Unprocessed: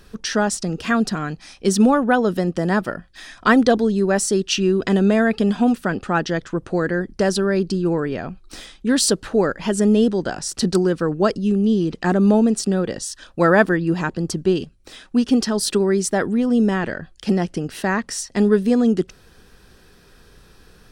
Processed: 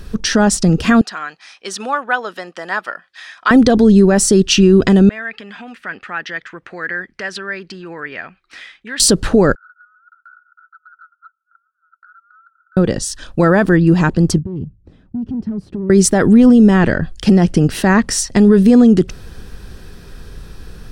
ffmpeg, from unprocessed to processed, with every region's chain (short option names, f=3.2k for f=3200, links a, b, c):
-filter_complex "[0:a]asettb=1/sr,asplit=3[a][b][c];[a]atrim=end=1.014[d];[b]atrim=start=1.01:end=3.51,asetpts=PTS-STARTPTS,afade=t=in:d=0.004:c=qsin,afade=t=out:st=2.496:d=0.004:c=qsin,highpass=1.3k,aemphasis=mode=reproduction:type=75fm[e];[c]atrim=start=3.506[f];[d][e]acrossfade=d=0.004:c1=hsin:c2=qsin[g];[g][f]acrossfade=d=0.004:c1=qsin:c2=hsin,asettb=1/sr,asplit=3[h][i][j];[h]atrim=end=5.094[k];[i]atrim=start=5.09:end=9,asetpts=PTS-STARTPTS,afade=t=in:d=0.004:c=qsin,afade=t=out:st=3.906:d=0.004:c=qsin,acompressor=threshold=-18dB:ratio=4:attack=3.2:release=140:knee=1:detection=peak,bandpass=f=2k:t=q:w=2.7[l];[j]atrim=start=8.996[m];[k][l]acrossfade=d=0.004:c1=hsin:c2=qsin[n];[n][m]acrossfade=d=0.004:c1=qsin:c2=hsin,asettb=1/sr,asplit=3[o][p][q];[o]atrim=end=9.554[r];[p]atrim=start=9.55:end=12.77,asetpts=PTS-STARTPTS,afade=t=in:d=0.004:c=qsin,afade=t=out:st=3.216:d=0.004:c=qsin,asuperpass=centerf=1400:order=8:qfactor=7.4,acompressor=threshold=-51dB:ratio=6:attack=3.2:release=140:knee=1:detection=peak[s];[q]atrim=start=12.766[t];[r][s]acrossfade=d=0.004:c1=hsin:c2=qsin[u];[u][t]acrossfade=d=0.004:c1=qsin:c2=hsin,asettb=1/sr,asplit=3[v][w][x];[v]atrim=end=14.384[y];[w]atrim=start=14.38:end=15.9,asetpts=PTS-STARTPTS,afade=t=in:d=0.004:c=qsin,afade=t=out:st=1.516:d=0.004:c=qsin,acompressor=threshold=-23dB:ratio=2.5:attack=3.2:release=140:knee=1:detection=peak,volume=24dB,asoftclip=hard,volume=-24dB,bandpass=f=120:t=q:w=1.2[z];[x]atrim=start=15.896[aa];[y][z]acrossfade=d=0.004:c1=hsin:c2=qsin[ab];[ab][aa]acrossfade=d=0.004:c1=qsin:c2=hsin,lowshelf=f=190:g=11,dynaudnorm=f=290:g=13:m=11.5dB,alimiter=level_in=8.5dB:limit=-1dB:release=50:level=0:latency=1,volume=-1dB"